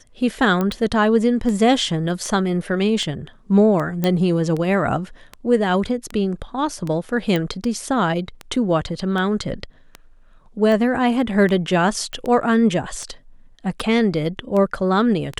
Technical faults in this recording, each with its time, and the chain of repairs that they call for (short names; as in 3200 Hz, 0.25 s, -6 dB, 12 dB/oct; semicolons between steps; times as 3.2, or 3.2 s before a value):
tick 78 rpm
0.61 pop -10 dBFS
4.04 pop -7 dBFS
7.36 pop -10 dBFS
12.13 pop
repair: de-click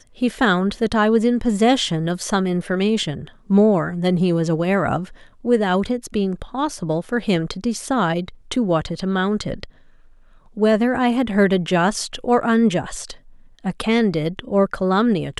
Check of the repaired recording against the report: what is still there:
none